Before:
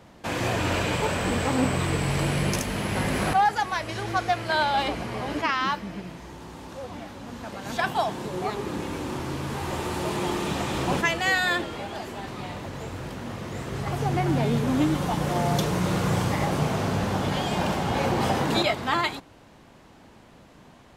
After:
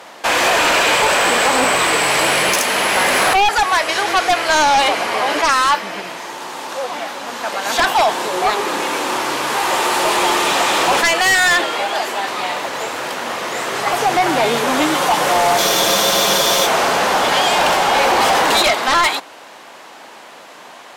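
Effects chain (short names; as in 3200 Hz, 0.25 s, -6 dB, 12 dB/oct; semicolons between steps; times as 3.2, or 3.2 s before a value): HPF 630 Hz 12 dB/oct; in parallel at +2 dB: limiter -20 dBFS, peak gain reduction 8.5 dB; on the sum: sine folder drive 9 dB, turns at -7.5 dBFS; spectral freeze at 15.61, 1.05 s; gain -2 dB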